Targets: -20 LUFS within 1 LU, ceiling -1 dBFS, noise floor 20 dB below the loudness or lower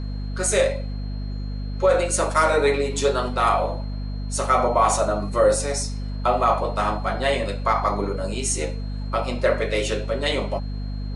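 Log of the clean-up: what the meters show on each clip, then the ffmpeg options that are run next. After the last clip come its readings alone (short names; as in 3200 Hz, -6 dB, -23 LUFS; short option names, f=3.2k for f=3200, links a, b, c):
hum 50 Hz; harmonics up to 250 Hz; hum level -26 dBFS; steady tone 4200 Hz; tone level -48 dBFS; loudness -23.0 LUFS; peak -7.0 dBFS; loudness target -20.0 LUFS
-> -af "bandreject=f=50:t=h:w=6,bandreject=f=100:t=h:w=6,bandreject=f=150:t=h:w=6,bandreject=f=200:t=h:w=6,bandreject=f=250:t=h:w=6"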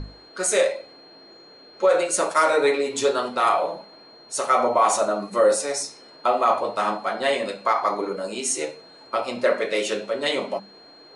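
hum none; steady tone 4200 Hz; tone level -48 dBFS
-> -af "bandreject=f=4.2k:w=30"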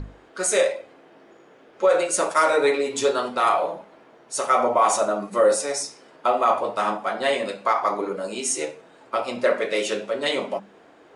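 steady tone none; loudness -23.0 LUFS; peak -7.5 dBFS; loudness target -20.0 LUFS
-> -af "volume=3dB"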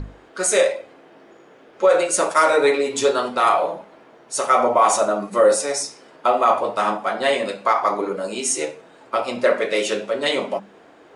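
loudness -20.0 LUFS; peak -4.5 dBFS; noise floor -49 dBFS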